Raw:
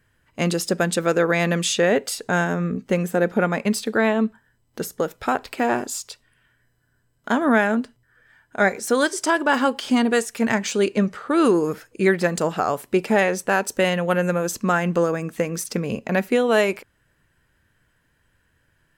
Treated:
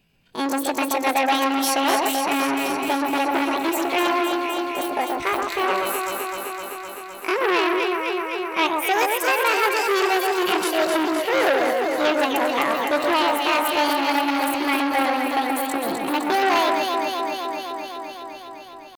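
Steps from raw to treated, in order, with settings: pitch shift +8 st; echo whose repeats swap between lows and highs 128 ms, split 1.7 kHz, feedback 86%, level -3.5 dB; transformer saturation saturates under 2.2 kHz

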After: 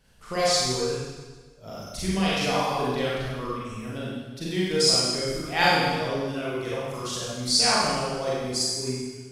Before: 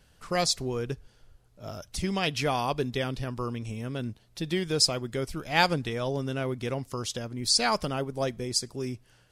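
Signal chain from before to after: reverb removal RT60 1.9 s; Schroeder reverb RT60 1.4 s, combs from 32 ms, DRR -8 dB; trim -4 dB

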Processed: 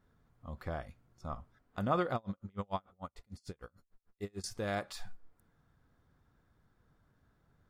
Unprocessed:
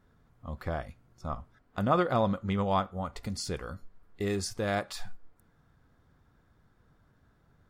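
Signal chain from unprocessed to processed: 2.15–4.44 s: logarithmic tremolo 6.7 Hz, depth 37 dB; trim -5.5 dB

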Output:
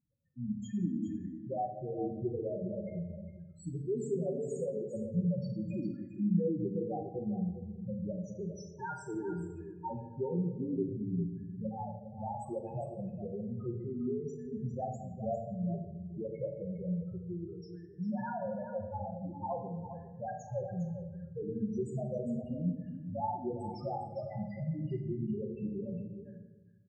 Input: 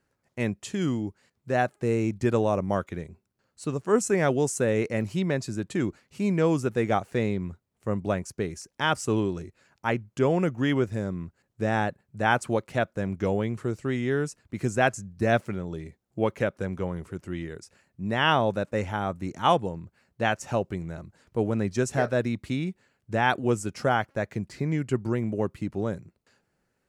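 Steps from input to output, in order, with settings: 17.47–18.60 s: hum notches 60/120/180/240/300/360/420/480/540 Hz; compression 2:1, threshold -36 dBFS, peak gain reduction 11.5 dB; loudest bins only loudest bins 2; delay 405 ms -10.5 dB; on a send at -1.5 dB: reverberation RT60 1.0 s, pre-delay 5 ms

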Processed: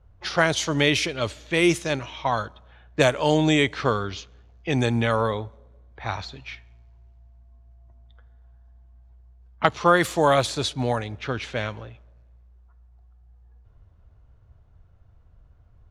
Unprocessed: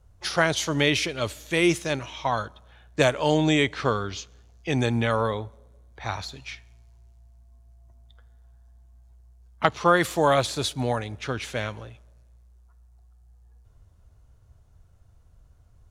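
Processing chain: level-controlled noise filter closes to 2.8 kHz, open at -17.5 dBFS; trim +1.5 dB

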